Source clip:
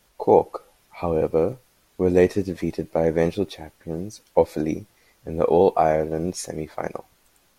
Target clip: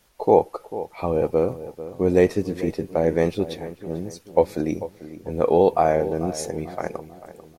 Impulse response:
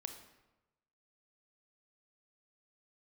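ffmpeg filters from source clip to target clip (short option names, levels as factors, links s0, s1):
-filter_complex "[0:a]asplit=2[s0][s1];[s1]adelay=443,lowpass=f=2000:p=1,volume=0.2,asplit=2[s2][s3];[s3]adelay=443,lowpass=f=2000:p=1,volume=0.44,asplit=2[s4][s5];[s5]adelay=443,lowpass=f=2000:p=1,volume=0.44,asplit=2[s6][s7];[s7]adelay=443,lowpass=f=2000:p=1,volume=0.44[s8];[s0][s2][s4][s6][s8]amix=inputs=5:normalize=0"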